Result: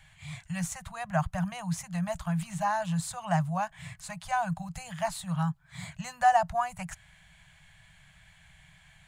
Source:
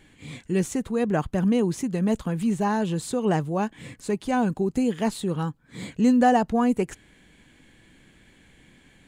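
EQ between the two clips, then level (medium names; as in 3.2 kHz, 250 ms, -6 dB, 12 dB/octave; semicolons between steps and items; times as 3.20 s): Chebyshev band-stop 170–640 Hz, order 4; dynamic bell 3.2 kHz, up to -5 dB, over -49 dBFS, Q 1.4; 0.0 dB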